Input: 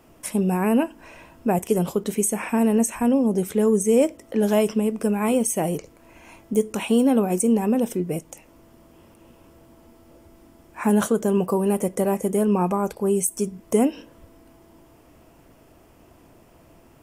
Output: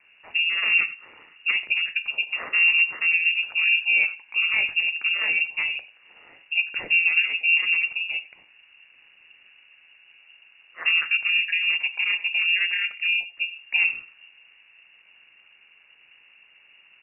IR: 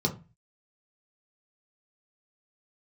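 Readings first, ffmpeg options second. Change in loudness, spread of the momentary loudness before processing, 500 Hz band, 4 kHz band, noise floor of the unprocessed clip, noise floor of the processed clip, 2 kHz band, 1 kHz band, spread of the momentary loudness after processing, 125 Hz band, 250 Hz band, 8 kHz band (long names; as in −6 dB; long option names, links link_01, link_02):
+1.0 dB, 6 LU, below −25 dB, can't be measured, −53 dBFS, −57 dBFS, +19.0 dB, −15.5 dB, 9 LU, below −30 dB, below −35 dB, below −40 dB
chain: -filter_complex "[0:a]aeval=exprs='val(0)*sin(2*PI*83*n/s)':channel_layout=same,asplit=2[link_01][link_02];[link_02]adelay=90,highpass=300,lowpass=3400,asoftclip=type=hard:threshold=-17.5dB,volume=-16dB[link_03];[link_01][link_03]amix=inputs=2:normalize=0,asplit=2[link_04][link_05];[1:a]atrim=start_sample=2205[link_06];[link_05][link_06]afir=irnorm=-1:irlink=0,volume=-21.5dB[link_07];[link_04][link_07]amix=inputs=2:normalize=0,lowpass=frequency=2500:width_type=q:width=0.5098,lowpass=frequency=2500:width_type=q:width=0.6013,lowpass=frequency=2500:width_type=q:width=0.9,lowpass=frequency=2500:width_type=q:width=2.563,afreqshift=-2900"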